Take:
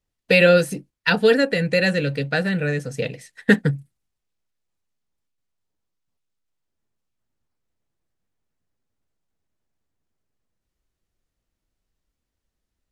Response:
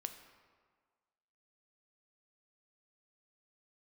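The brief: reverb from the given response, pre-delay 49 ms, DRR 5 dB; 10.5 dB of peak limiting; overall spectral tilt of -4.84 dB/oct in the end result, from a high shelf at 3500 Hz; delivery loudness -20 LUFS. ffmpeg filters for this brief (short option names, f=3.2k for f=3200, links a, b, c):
-filter_complex "[0:a]highshelf=f=3.5k:g=8.5,alimiter=limit=-12.5dB:level=0:latency=1,asplit=2[a][b];[1:a]atrim=start_sample=2205,adelay=49[c];[b][c]afir=irnorm=-1:irlink=0,volume=-2.5dB[d];[a][d]amix=inputs=2:normalize=0,volume=2dB"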